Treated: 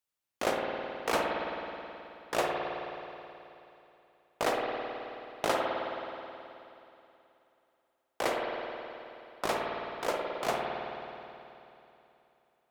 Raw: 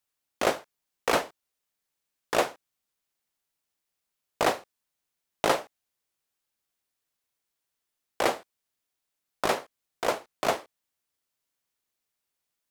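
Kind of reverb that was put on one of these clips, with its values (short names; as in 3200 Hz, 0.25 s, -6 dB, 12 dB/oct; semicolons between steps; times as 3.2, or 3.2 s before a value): spring tank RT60 3 s, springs 53 ms, chirp 40 ms, DRR -1 dB; gain -6 dB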